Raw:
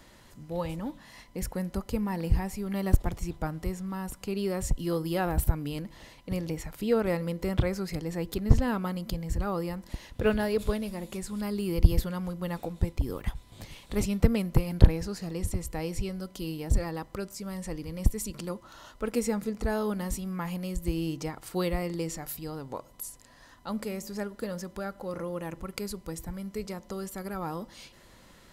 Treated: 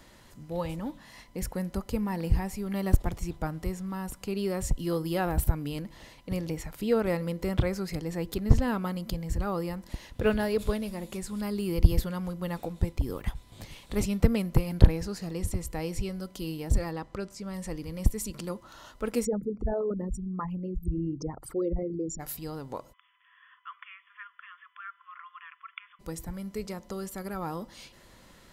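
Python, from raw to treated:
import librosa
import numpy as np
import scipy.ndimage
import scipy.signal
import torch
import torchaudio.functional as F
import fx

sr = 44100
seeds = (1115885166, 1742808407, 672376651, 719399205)

y = fx.air_absorb(x, sr, metres=53.0, at=(16.93, 17.54))
y = fx.envelope_sharpen(y, sr, power=3.0, at=(19.24, 22.19), fade=0.02)
y = fx.brickwall_bandpass(y, sr, low_hz=1000.0, high_hz=3500.0, at=(22.92, 25.99), fade=0.02)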